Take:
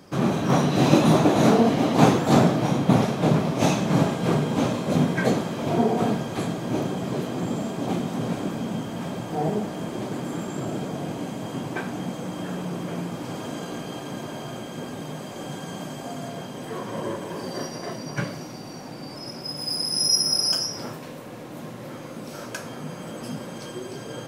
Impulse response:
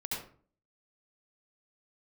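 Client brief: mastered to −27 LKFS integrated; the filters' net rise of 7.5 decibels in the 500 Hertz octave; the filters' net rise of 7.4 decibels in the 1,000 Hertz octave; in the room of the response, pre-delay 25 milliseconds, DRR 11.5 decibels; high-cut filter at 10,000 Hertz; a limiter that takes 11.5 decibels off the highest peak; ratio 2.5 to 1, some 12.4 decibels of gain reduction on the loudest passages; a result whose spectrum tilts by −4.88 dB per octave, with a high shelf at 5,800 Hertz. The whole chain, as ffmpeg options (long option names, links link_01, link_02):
-filter_complex "[0:a]lowpass=10000,equalizer=frequency=500:width_type=o:gain=7.5,equalizer=frequency=1000:width_type=o:gain=7,highshelf=frequency=5800:gain=-7,acompressor=threshold=-27dB:ratio=2.5,alimiter=limit=-22.5dB:level=0:latency=1,asplit=2[link_01][link_02];[1:a]atrim=start_sample=2205,adelay=25[link_03];[link_02][link_03]afir=irnorm=-1:irlink=0,volume=-14dB[link_04];[link_01][link_04]amix=inputs=2:normalize=0,volume=4.5dB"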